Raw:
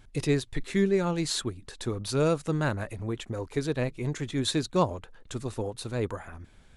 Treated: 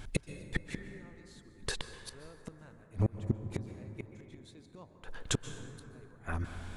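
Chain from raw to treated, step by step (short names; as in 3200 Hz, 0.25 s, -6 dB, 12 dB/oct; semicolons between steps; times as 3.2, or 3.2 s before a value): flipped gate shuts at -26 dBFS, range -38 dB; plate-style reverb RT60 3.4 s, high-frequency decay 0.3×, pre-delay 0.115 s, DRR 8.5 dB; gain +9 dB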